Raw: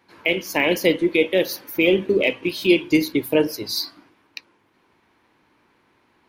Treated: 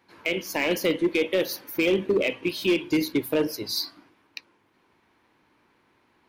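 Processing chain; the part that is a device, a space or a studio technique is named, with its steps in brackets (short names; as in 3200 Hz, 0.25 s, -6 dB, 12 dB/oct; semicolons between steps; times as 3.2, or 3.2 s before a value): limiter into clipper (limiter -9 dBFS, peak gain reduction 4 dB; hard clip -13 dBFS, distortion -19 dB); gain -3 dB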